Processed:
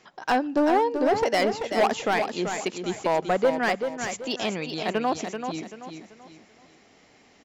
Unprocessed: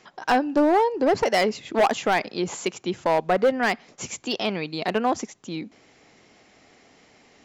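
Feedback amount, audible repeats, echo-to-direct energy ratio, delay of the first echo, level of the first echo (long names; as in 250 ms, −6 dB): 35%, 4, −6.5 dB, 385 ms, −7.0 dB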